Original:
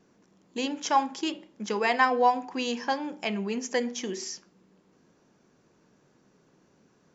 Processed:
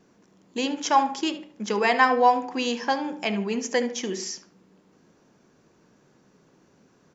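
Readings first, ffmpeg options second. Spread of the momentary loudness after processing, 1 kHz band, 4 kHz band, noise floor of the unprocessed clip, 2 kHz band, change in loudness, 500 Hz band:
12 LU, +4.0 dB, +3.5 dB, −65 dBFS, +3.5 dB, +4.0 dB, +4.0 dB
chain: -filter_complex "[0:a]asplit=2[link_01][link_02];[link_02]adelay=73,lowpass=frequency=2900:poles=1,volume=-12dB,asplit=2[link_03][link_04];[link_04]adelay=73,lowpass=frequency=2900:poles=1,volume=0.36,asplit=2[link_05][link_06];[link_06]adelay=73,lowpass=frequency=2900:poles=1,volume=0.36,asplit=2[link_07][link_08];[link_08]adelay=73,lowpass=frequency=2900:poles=1,volume=0.36[link_09];[link_01][link_03][link_05][link_07][link_09]amix=inputs=5:normalize=0,volume=3.5dB"

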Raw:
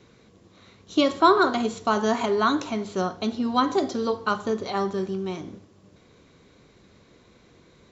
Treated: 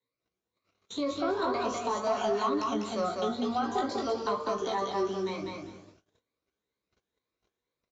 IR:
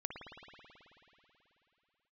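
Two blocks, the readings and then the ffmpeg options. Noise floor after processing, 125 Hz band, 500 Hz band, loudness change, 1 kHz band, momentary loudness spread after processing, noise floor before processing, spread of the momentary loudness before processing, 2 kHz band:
below −85 dBFS, −8.5 dB, −5.5 dB, −7.0 dB, −6.5 dB, 6 LU, −56 dBFS, 11 LU, −10.5 dB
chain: -filter_complex "[0:a]afftfilt=real='re*pow(10,16/40*sin(2*PI*(1*log(max(b,1)*sr/1024/100)/log(2)-(2.1)*(pts-256)/sr)))':imag='im*pow(10,16/40*sin(2*PI*(1*log(max(b,1)*sr/1024/100)/log(2)-(2.1)*(pts-256)/sr)))':win_size=1024:overlap=0.75,acrossover=split=210|1200[link_01][link_02][link_03];[link_02]acompressor=threshold=-20dB:ratio=4[link_04];[link_03]acompressor=threshold=-37dB:ratio=4[link_05];[link_01][link_04][link_05]amix=inputs=3:normalize=0,flanger=delay=15:depth=6.1:speed=0.45,acrossover=split=110|400|2400[link_06][link_07][link_08][link_09];[link_06]acontrast=79[link_10];[link_10][link_07][link_08][link_09]amix=inputs=4:normalize=0,alimiter=limit=-20dB:level=0:latency=1:release=27,aecho=1:1:199|398|597:0.708|0.149|0.0312,aresample=16000,aresample=44100,agate=range=-32dB:threshold=-46dB:ratio=16:detection=peak,bass=frequency=250:gain=-12,treble=frequency=4000:gain=2,asoftclip=type=tanh:threshold=-18.5dB"

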